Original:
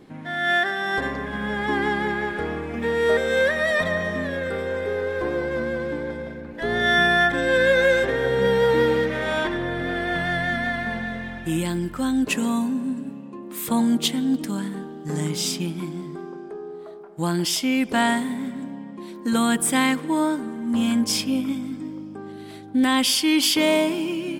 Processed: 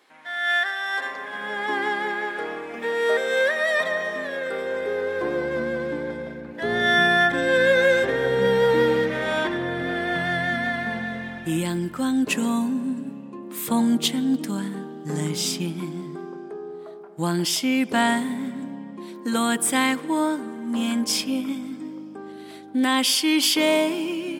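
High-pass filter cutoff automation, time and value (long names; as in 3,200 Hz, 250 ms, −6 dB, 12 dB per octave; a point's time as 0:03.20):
0:00.91 960 Hz
0:01.59 420 Hz
0:04.32 420 Hz
0:05.50 110 Hz
0:18.90 110 Hz
0:19.33 240 Hz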